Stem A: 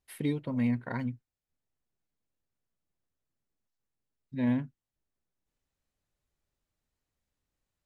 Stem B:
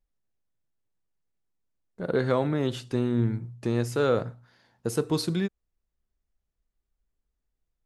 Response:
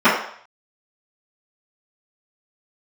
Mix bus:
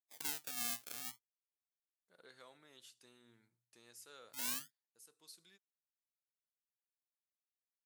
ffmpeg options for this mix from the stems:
-filter_complex "[0:a]agate=range=-20dB:threshold=-49dB:ratio=16:detection=peak,acrusher=samples=26:mix=1:aa=0.000001:lfo=1:lforange=41.6:lforate=0.32,volume=1.5dB,asplit=2[link_01][link_02];[1:a]adelay=100,volume=-14dB[link_03];[link_02]apad=whole_len=350991[link_04];[link_03][link_04]sidechaincompress=threshold=-36dB:ratio=6:attack=16:release=1380[link_05];[link_01][link_05]amix=inputs=2:normalize=0,aderivative"

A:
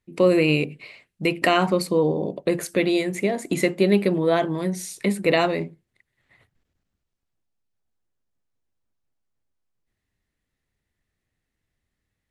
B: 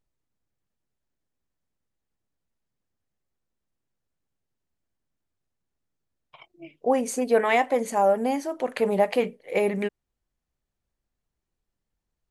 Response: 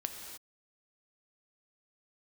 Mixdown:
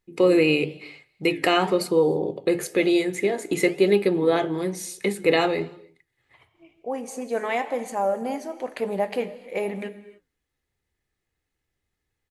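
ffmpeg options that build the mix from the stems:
-filter_complex "[0:a]highpass=52,aecho=1:1:2.4:0.49,volume=2dB,asplit=3[link_01][link_02][link_03];[link_02]volume=-15.5dB[link_04];[1:a]volume=-2.5dB,asplit=2[link_05][link_06];[link_06]volume=-6dB[link_07];[link_03]apad=whole_len=542564[link_08];[link_05][link_08]sidechaincompress=threshold=-33dB:ratio=8:attack=16:release=1470[link_09];[2:a]atrim=start_sample=2205[link_10];[link_04][link_07]amix=inputs=2:normalize=0[link_11];[link_11][link_10]afir=irnorm=-1:irlink=0[link_12];[link_01][link_09][link_12]amix=inputs=3:normalize=0,bandreject=frequency=50:width_type=h:width=6,bandreject=frequency=100:width_type=h:width=6,bandreject=frequency=150:width_type=h:width=6,flanger=delay=4.8:depth=8.7:regen=-81:speed=1:shape=sinusoidal"

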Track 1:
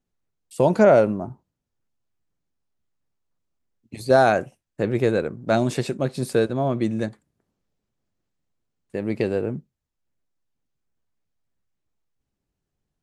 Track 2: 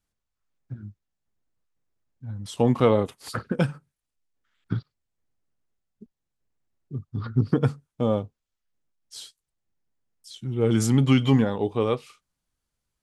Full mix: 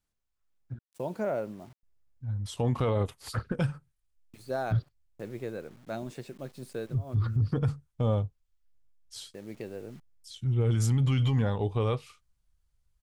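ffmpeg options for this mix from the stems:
ffmpeg -i stem1.wav -i stem2.wav -filter_complex "[0:a]agate=range=-9dB:threshold=-43dB:ratio=16:detection=peak,acrusher=bits=6:mix=0:aa=0.000001,adynamicequalizer=threshold=0.0158:dfrequency=2900:dqfactor=0.7:tfrequency=2900:tqfactor=0.7:attack=5:release=100:ratio=0.375:range=3:mode=cutabove:tftype=highshelf,adelay=400,volume=-16.5dB[link_01];[1:a]asubboost=boost=7.5:cutoff=89,volume=-3dB,asplit=3[link_02][link_03][link_04];[link_02]atrim=end=0.79,asetpts=PTS-STARTPTS,afade=type=out:start_time=0.786:duration=0.004:curve=hsin[link_05];[link_03]atrim=start=0.79:end=1.83,asetpts=PTS-STARTPTS,volume=0[link_06];[link_04]atrim=start=1.83,asetpts=PTS-STARTPTS,afade=type=in:duration=0.004:curve=hsin[link_07];[link_05][link_06][link_07]concat=n=3:v=0:a=1,asplit=2[link_08][link_09];[link_09]apad=whole_len=592107[link_10];[link_01][link_10]sidechaincompress=threshold=-36dB:ratio=12:attack=38:release=185[link_11];[link_11][link_08]amix=inputs=2:normalize=0,alimiter=limit=-19.5dB:level=0:latency=1:release=17" out.wav

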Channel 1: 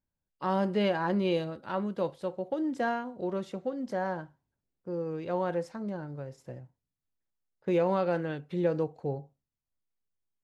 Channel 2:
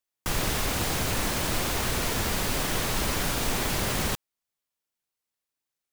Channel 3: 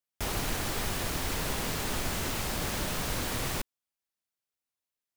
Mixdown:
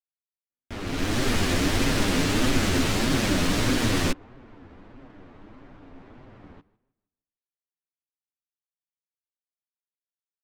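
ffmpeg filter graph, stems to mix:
ffmpeg -i stem1.wav -i stem2.wav -i stem3.wav -filter_complex "[1:a]lowpass=frequency=2700:poles=1,adelay=2450,volume=-16.5dB,asplit=2[link_01][link_02];[link_02]volume=-19.5dB[link_03];[2:a]equalizer=frequency=890:width=1.5:gain=-5,dynaudnorm=framelen=150:gausssize=7:maxgain=11.5dB,adelay=500,volume=1dB[link_04];[link_03]aecho=0:1:155|310|465|620|775:1|0.33|0.109|0.0359|0.0119[link_05];[link_01][link_04][link_05]amix=inputs=3:normalize=0,equalizer=frequency=280:width_type=o:width=0.47:gain=9,adynamicsmooth=sensitivity=5.5:basefreq=1800,flanger=delay=7.3:depth=4.7:regen=-3:speed=1.6:shape=triangular" out.wav

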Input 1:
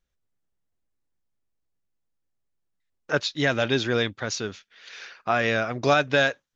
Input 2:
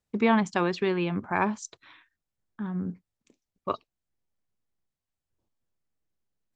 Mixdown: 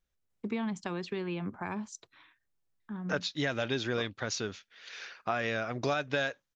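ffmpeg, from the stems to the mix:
ffmpeg -i stem1.wav -i stem2.wav -filter_complex "[0:a]volume=-3dB[link_01];[1:a]acrossover=split=280|3000[link_02][link_03][link_04];[link_03]acompressor=threshold=-29dB:ratio=6[link_05];[link_02][link_05][link_04]amix=inputs=3:normalize=0,adelay=300,volume=-6dB[link_06];[link_01][link_06]amix=inputs=2:normalize=0,acompressor=threshold=-30dB:ratio=2.5" out.wav

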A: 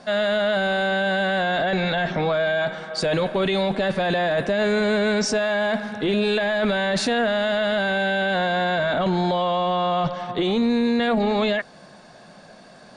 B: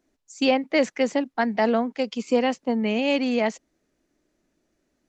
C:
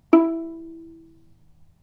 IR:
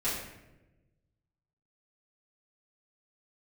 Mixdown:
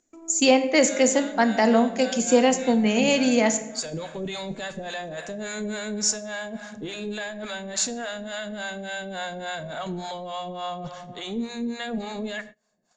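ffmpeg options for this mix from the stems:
-filter_complex "[0:a]acrossover=split=550[link_01][link_02];[link_01]aeval=exprs='val(0)*(1-1/2+1/2*cos(2*PI*3.5*n/s))':channel_layout=same[link_03];[link_02]aeval=exprs='val(0)*(1-1/2-1/2*cos(2*PI*3.5*n/s))':channel_layout=same[link_04];[link_03][link_04]amix=inputs=2:normalize=0,adelay=800,volume=-7dB,asplit=2[link_05][link_06];[link_06]volume=-19dB[link_07];[1:a]volume=0.5dB,asplit=3[link_08][link_09][link_10];[link_09]volume=-14dB[link_11];[2:a]alimiter=limit=-12dB:level=0:latency=1:release=176,aeval=exprs='val(0)*pow(10,-22*if(lt(mod(-2.5*n/s,1),2*abs(-2.5)/1000),1-mod(-2.5*n/s,1)/(2*abs(-2.5)/1000),(mod(-2.5*n/s,1)-2*abs(-2.5)/1000)/(1-2*abs(-2.5)/1000))/20)':channel_layout=same,volume=-16dB[link_12];[link_10]apad=whole_len=607164[link_13];[link_05][link_13]sidechaincompress=threshold=-24dB:ratio=8:attack=28:release=909[link_14];[3:a]atrim=start_sample=2205[link_15];[link_07][link_11]amix=inputs=2:normalize=0[link_16];[link_16][link_15]afir=irnorm=-1:irlink=0[link_17];[link_14][link_08][link_12][link_17]amix=inputs=4:normalize=0,acompressor=mode=upward:threshold=-35dB:ratio=2.5,agate=range=-27dB:threshold=-42dB:ratio=16:detection=peak,lowpass=frequency=7000:width_type=q:width=12"

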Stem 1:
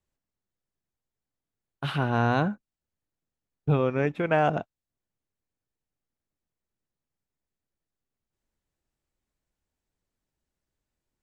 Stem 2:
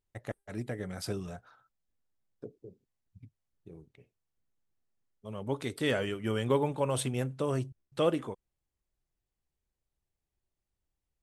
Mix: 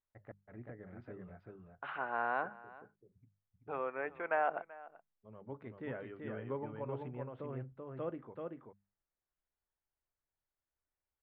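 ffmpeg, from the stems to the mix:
ffmpeg -i stem1.wav -i stem2.wav -filter_complex "[0:a]highpass=690,volume=-6dB,asplit=2[link_01][link_02];[link_02]volume=-19.5dB[link_03];[1:a]volume=-13dB,asplit=2[link_04][link_05];[link_05]volume=-3.5dB[link_06];[link_03][link_06]amix=inputs=2:normalize=0,aecho=0:1:384:1[link_07];[link_01][link_04][link_07]amix=inputs=3:normalize=0,lowpass=frequency=2000:width=0.5412,lowpass=frequency=2000:width=1.3066,bandreject=frequency=50:width_type=h:width=6,bandreject=frequency=100:width_type=h:width=6,bandreject=frequency=150:width_type=h:width=6,bandreject=frequency=200:width_type=h:width=6" out.wav

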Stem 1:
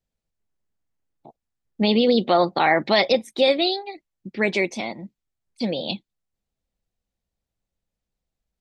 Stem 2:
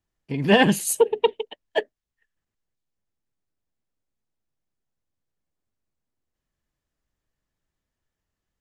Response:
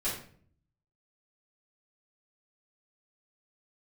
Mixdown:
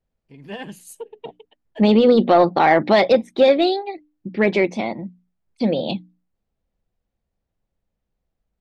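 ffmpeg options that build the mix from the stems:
-filter_complex "[0:a]lowpass=frequency=1300:poles=1,aeval=exprs='0.422*(cos(1*acos(clip(val(0)/0.422,-1,1)))-cos(1*PI/2))+0.00596*(cos(5*acos(clip(val(0)/0.422,-1,1)))-cos(5*PI/2))':channel_layout=same,volume=-0.5dB,asplit=2[link_01][link_02];[1:a]volume=-15.5dB[link_03];[link_02]apad=whole_len=379528[link_04];[link_03][link_04]sidechaingate=range=-8dB:threshold=-46dB:ratio=16:detection=peak[link_05];[link_01][link_05]amix=inputs=2:normalize=0,bandreject=frequency=60:width_type=h:width=6,bandreject=frequency=120:width_type=h:width=6,bandreject=frequency=180:width_type=h:width=6,bandreject=frequency=240:width_type=h:width=6,bandreject=frequency=300:width_type=h:width=6,acontrast=71"

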